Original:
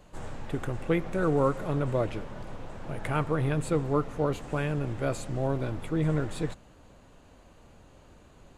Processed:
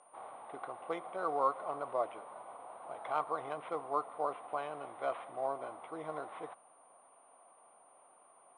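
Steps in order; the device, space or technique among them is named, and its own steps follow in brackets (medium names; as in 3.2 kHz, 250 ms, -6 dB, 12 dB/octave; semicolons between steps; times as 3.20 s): 4.72–5.47 s: dynamic bell 2 kHz, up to +5 dB, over -51 dBFS, Q 1.8; toy sound module (decimation joined by straight lines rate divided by 8×; class-D stage that switches slowly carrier 9.3 kHz; cabinet simulation 710–4900 Hz, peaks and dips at 720 Hz +10 dB, 1.1 kHz +8 dB, 1.7 kHz -10 dB, 2.7 kHz -5 dB, 4.5 kHz -9 dB); trim -4 dB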